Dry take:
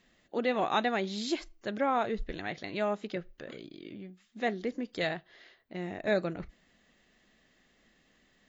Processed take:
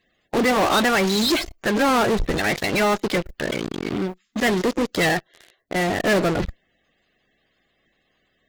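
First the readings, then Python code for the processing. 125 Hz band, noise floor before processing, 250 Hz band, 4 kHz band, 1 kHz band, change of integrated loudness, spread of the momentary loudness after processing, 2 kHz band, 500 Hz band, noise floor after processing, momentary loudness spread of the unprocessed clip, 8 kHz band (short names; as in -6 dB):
+14.5 dB, -68 dBFS, +13.0 dB, +15.5 dB, +10.5 dB, +11.5 dB, 9 LU, +14.5 dB, +10.5 dB, -69 dBFS, 17 LU, n/a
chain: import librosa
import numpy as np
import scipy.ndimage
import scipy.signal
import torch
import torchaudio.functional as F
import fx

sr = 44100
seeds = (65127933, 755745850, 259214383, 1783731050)

p1 = fx.spec_quant(x, sr, step_db=30)
p2 = fx.fuzz(p1, sr, gain_db=45.0, gate_db=-49.0)
y = p1 + (p2 * librosa.db_to_amplitude(-6.0))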